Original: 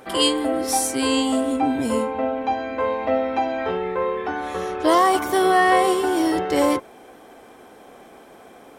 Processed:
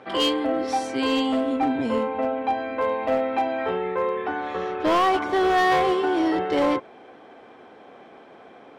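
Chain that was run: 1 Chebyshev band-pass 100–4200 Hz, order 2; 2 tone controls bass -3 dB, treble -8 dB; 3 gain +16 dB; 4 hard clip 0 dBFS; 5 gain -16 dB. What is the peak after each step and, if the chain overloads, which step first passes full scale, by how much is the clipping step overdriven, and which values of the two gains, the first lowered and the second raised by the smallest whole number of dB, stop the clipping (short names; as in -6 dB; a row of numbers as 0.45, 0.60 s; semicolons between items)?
-7.0, -7.0, +9.0, 0.0, -16.0 dBFS; step 3, 9.0 dB; step 3 +7 dB, step 5 -7 dB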